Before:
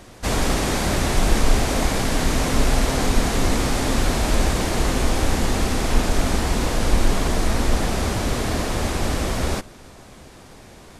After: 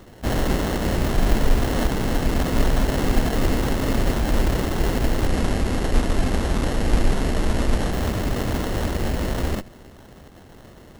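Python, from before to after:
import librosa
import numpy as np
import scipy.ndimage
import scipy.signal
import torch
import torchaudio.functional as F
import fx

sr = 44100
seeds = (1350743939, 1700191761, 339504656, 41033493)

y = fx.lower_of_two(x, sr, delay_ms=0.42)
y = fx.sample_hold(y, sr, seeds[0], rate_hz=2400.0, jitter_pct=0)
y = fx.brickwall_lowpass(y, sr, high_hz=12000.0, at=(5.26, 7.91), fade=0.02)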